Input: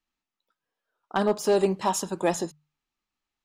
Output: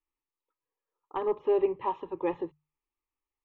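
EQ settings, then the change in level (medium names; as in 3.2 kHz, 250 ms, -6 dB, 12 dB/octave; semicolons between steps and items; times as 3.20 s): Gaussian low-pass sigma 3.4 samples; static phaser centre 1 kHz, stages 8; dynamic bell 120 Hz, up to +5 dB, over -44 dBFS, Q 0.94; -2.5 dB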